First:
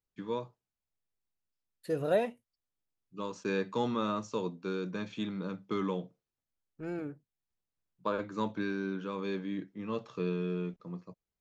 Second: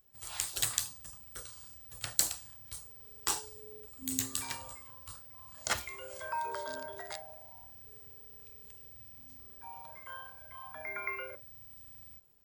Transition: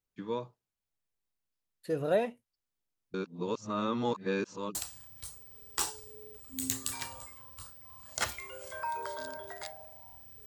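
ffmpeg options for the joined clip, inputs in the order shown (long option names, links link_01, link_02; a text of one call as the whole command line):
ffmpeg -i cue0.wav -i cue1.wav -filter_complex "[0:a]apad=whole_dur=10.46,atrim=end=10.46,asplit=2[link_01][link_02];[link_01]atrim=end=3.142[link_03];[link_02]atrim=start=3.138:end=4.752,asetpts=PTS-STARTPTS,areverse[link_04];[1:a]atrim=start=2.238:end=7.95[link_05];[link_03][link_04]acrossfade=duration=0.004:curve1=hsin:curve2=hsin[link_06];[link_06][link_05]acrossfade=duration=0.004:curve1=hsin:curve2=hsin" out.wav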